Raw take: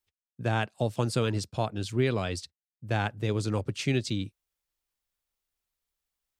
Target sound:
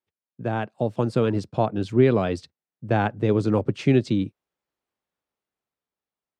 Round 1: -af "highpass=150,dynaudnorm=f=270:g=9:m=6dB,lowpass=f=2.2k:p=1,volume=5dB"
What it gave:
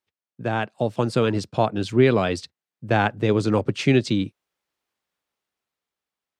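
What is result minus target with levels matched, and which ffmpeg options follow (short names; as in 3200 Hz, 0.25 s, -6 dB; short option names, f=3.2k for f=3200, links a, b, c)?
2000 Hz band +4.5 dB
-af "highpass=150,dynaudnorm=f=270:g=9:m=6dB,lowpass=f=770:p=1,volume=5dB"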